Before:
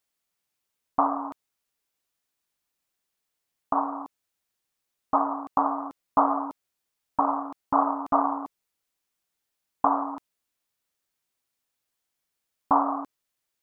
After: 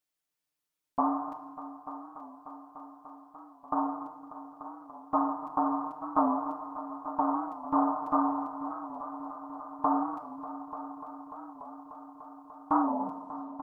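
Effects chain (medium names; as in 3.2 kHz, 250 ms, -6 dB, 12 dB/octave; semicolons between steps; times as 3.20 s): tape stop on the ending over 0.80 s; comb 6.6 ms, depth 78%; on a send: multi-head delay 295 ms, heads all three, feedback 73%, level -17 dB; on the sum: FDN reverb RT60 1.5 s, low-frequency decay 1.45×, high-frequency decay 0.9×, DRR 7.5 dB; warped record 45 rpm, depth 100 cents; trim -8 dB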